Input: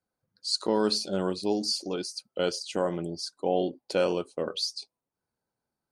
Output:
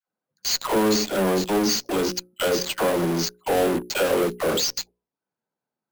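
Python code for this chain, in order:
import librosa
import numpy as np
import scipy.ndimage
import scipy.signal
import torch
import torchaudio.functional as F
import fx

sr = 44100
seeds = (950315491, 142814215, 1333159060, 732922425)

p1 = scipy.signal.medfilt(x, 3)
p2 = scipy.signal.sosfilt(scipy.signal.butter(4, 140.0, 'highpass', fs=sr, output='sos'), p1)
p3 = fx.high_shelf(p2, sr, hz=5400.0, db=-11.0)
p4 = fx.dispersion(p3, sr, late='lows', ms=78.0, hz=750.0)
p5 = fx.fuzz(p4, sr, gain_db=47.0, gate_db=-46.0)
p6 = p4 + (p5 * 10.0 ** (-10.0 / 20.0))
p7 = fx.hum_notches(p6, sr, base_hz=60, count=9)
y = np.repeat(p7[::4], 4)[:len(p7)]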